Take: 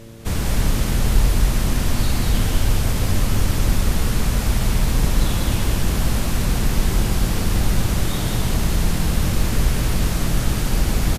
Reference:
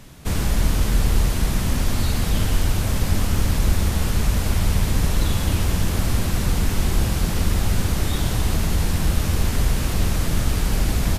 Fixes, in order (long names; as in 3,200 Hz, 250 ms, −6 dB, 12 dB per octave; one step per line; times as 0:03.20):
hum removal 113.3 Hz, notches 5
echo removal 195 ms −4 dB